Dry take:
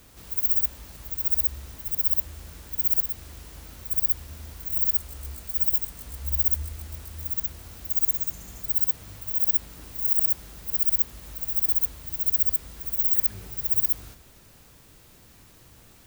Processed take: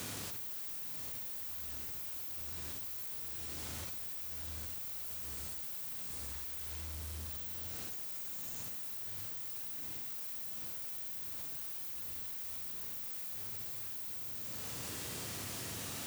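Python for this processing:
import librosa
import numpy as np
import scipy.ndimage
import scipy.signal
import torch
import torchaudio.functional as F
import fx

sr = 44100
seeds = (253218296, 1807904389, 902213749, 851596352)

p1 = fx.high_shelf(x, sr, hz=12000.0, db=-11.0)
p2 = p1 + 10.0 ** (-21.0 / 20.0) * np.pad(p1, (int(139 * sr / 1000.0), 0))[:len(p1)]
p3 = fx.schmitt(p2, sr, flips_db=-31.5)
p4 = p2 + (p3 * librosa.db_to_amplitude(-11.0))
p5 = scipy.signal.sosfilt(scipy.signal.butter(4, 88.0, 'highpass', fs=sr, output='sos'), p4)
p6 = fx.high_shelf(p5, sr, hz=4600.0, db=8.5)
p7 = fx.rev_schroeder(p6, sr, rt60_s=1.6, comb_ms=26, drr_db=-0.5)
p8 = np.clip(p7, -10.0 ** (-33.5 / 20.0), 10.0 ** (-33.5 / 20.0))
p9 = fx.env_flatten(p8, sr, amount_pct=100)
y = p9 * librosa.db_to_amplitude(-8.5)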